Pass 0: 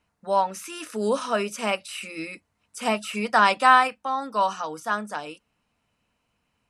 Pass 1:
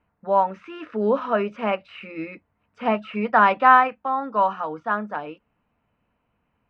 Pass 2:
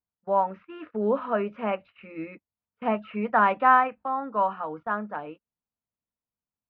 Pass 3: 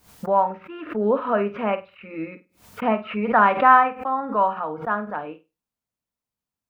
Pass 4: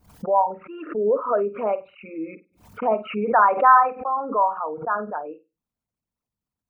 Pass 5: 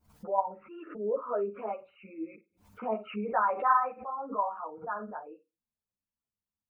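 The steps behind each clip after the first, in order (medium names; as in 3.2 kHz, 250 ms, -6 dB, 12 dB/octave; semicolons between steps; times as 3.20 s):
Bessel low-pass 1.7 kHz, order 4; trim +3.5 dB
gate -39 dBFS, range -23 dB; distance through air 300 m; trim -3 dB
on a send: flutter echo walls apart 8.5 m, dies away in 0.25 s; on the sum: swell ahead of each attack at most 140 dB/s; trim +4 dB
resonances exaggerated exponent 2
three-phase chorus; trim -7.5 dB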